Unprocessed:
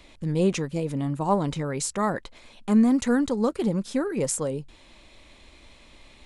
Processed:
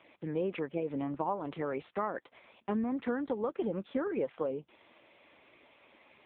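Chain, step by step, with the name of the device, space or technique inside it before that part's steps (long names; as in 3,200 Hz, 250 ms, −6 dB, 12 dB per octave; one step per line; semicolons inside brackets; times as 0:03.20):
0:01.56–0:02.14: high-pass filter 68 Hz 12 dB per octave
voicemail (band-pass filter 330–2,700 Hz; downward compressor 8 to 1, threshold −28 dBFS, peak gain reduction 11.5 dB; AMR narrowband 6.7 kbit/s 8,000 Hz)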